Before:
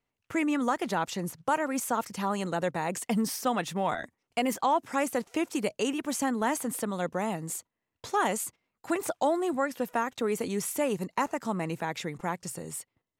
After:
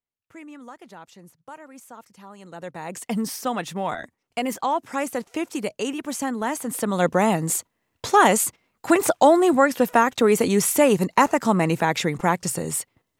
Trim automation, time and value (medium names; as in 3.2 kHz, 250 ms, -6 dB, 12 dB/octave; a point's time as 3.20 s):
2.36 s -14 dB
2.63 s -6.5 dB
3.13 s +2 dB
6.61 s +2 dB
7.05 s +11.5 dB